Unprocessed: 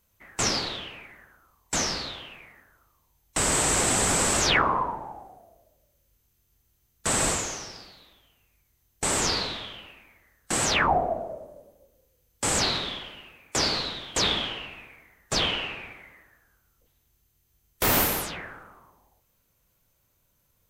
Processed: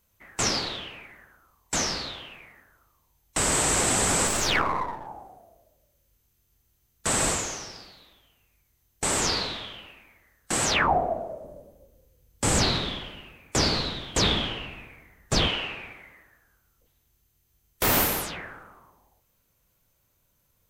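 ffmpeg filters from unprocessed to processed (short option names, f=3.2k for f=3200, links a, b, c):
-filter_complex "[0:a]asettb=1/sr,asplit=3[a][b][c];[a]atrim=end=4.274[d];[b]atrim=start=4.27:end=5.07,asetpts=PTS-STARTPTS,afade=t=in:d=0.004:c=qsin,afade=t=out:st=0.796:d=0.004:c=qsin,aeval=exprs='if(lt(val(0),0),0.447*val(0),val(0))':c=same[e];[c]atrim=start=5.066[f];[d][e]acrossfade=d=0.004:c1=hsin:c2=qsin[g];[g][f]acrossfade=d=0.004:c1=qsin:c2=hsin,asettb=1/sr,asplit=3[h][i][j];[h]atrim=end=11.444[k];[i]atrim=start=11.44:end=15.48,asetpts=PTS-STARTPTS,afade=t=in:d=0.004:c=qsin,afade=t=out:st=4.036:d=0.004:c=qsin,lowshelf=f=300:g=9.5[l];[j]atrim=start=15.476[m];[k][l]acrossfade=d=0.004:c1=hsin:c2=qsin[n];[n][m]acrossfade=d=0.004:c1=qsin:c2=hsin"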